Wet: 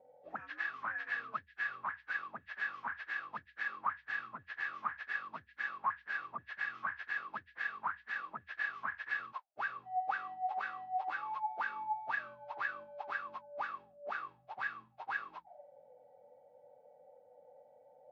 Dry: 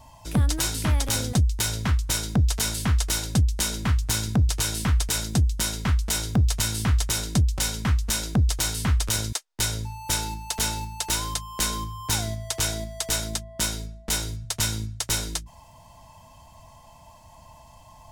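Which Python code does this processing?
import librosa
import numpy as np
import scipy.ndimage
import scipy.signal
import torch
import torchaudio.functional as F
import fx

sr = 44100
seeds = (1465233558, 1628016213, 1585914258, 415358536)

y = fx.partial_stretch(x, sr, pct=87)
y = fx.auto_wah(y, sr, base_hz=470.0, top_hz=1700.0, q=19.0, full_db=-22.0, direction='up')
y = fx.bandpass_edges(y, sr, low_hz=150.0, high_hz=2200.0)
y = F.gain(torch.from_numpy(y), 12.0).numpy()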